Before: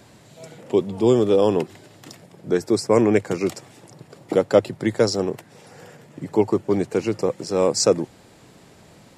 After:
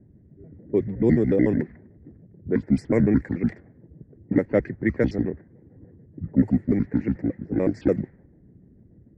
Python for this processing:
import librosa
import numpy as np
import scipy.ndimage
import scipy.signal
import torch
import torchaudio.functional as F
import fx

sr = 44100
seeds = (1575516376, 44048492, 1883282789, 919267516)

y = fx.pitch_trill(x, sr, semitones=-8.5, every_ms=73)
y = fx.curve_eq(y, sr, hz=(280.0, 1200.0, 1900.0, 2900.0, 6100.0), db=(0, -15, 7, -22, -18))
y = fx.env_lowpass(y, sr, base_hz=330.0, full_db=-15.5)